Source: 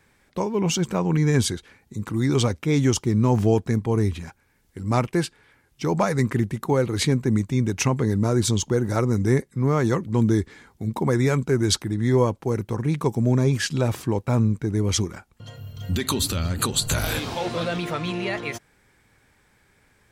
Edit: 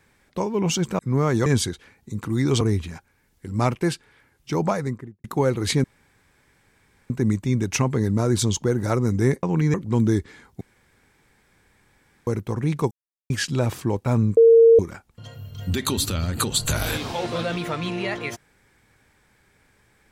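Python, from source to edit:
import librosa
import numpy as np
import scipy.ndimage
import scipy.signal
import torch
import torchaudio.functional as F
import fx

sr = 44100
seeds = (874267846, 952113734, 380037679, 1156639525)

y = fx.studio_fade_out(x, sr, start_s=5.87, length_s=0.69)
y = fx.edit(y, sr, fx.swap(start_s=0.99, length_s=0.31, other_s=9.49, other_length_s=0.47),
    fx.cut(start_s=2.45, length_s=1.48),
    fx.insert_room_tone(at_s=7.16, length_s=1.26),
    fx.room_tone_fill(start_s=10.83, length_s=1.66),
    fx.silence(start_s=13.13, length_s=0.39),
    fx.bleep(start_s=14.59, length_s=0.42, hz=458.0, db=-8.5), tone=tone)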